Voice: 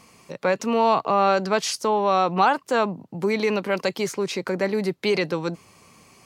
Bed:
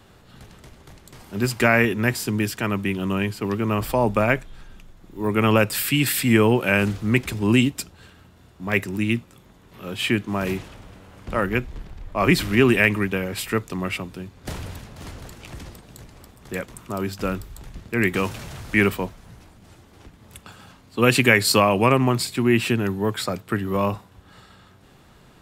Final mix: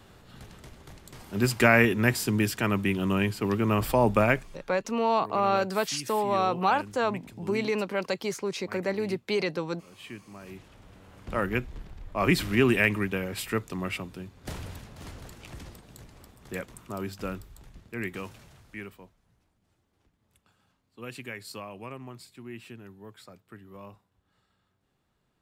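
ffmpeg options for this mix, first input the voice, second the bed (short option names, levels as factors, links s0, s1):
-filter_complex "[0:a]adelay=4250,volume=0.531[s0];[1:a]volume=4.73,afade=t=out:st=4.2:d=0.6:silence=0.112202,afade=t=in:st=10.47:d=0.62:silence=0.16788,afade=t=out:st=16.38:d=2.48:silence=0.125893[s1];[s0][s1]amix=inputs=2:normalize=0"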